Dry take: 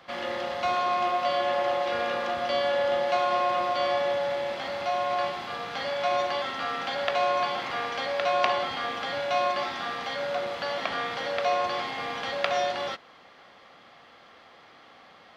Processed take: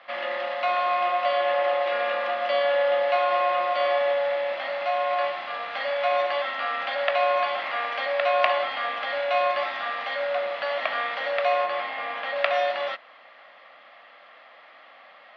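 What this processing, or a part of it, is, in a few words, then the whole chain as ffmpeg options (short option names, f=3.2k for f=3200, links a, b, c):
phone earpiece: -filter_complex "[0:a]highpass=380,equalizer=f=400:t=q:w=4:g=-10,equalizer=f=610:t=q:w=4:g=9,equalizer=f=1.2k:t=q:w=4:g=4,equalizer=f=1.9k:t=q:w=4:g=7,equalizer=f=2.6k:t=q:w=4:g=5,lowpass=f=4.2k:w=0.5412,lowpass=f=4.2k:w=1.3066,asettb=1/sr,asplit=3[a][b][c];[a]atrim=end=11.644[d];[b]atrim=start=11.64:end=12.36,asetpts=PTS-STARTPTS,afade=t=in:d=0.004:c=qsin,afade=t=out:st=0.716:d=0.004:c=qsin,highshelf=f=5.2k:g=-11[e];[c]atrim=start=12.356[f];[d][e]acrossfade=d=0.004:c1=hsin:c2=qsin[g];[g][f]acrossfade=d=0.004:c1=qsin:c2=hsin,volume=-1dB"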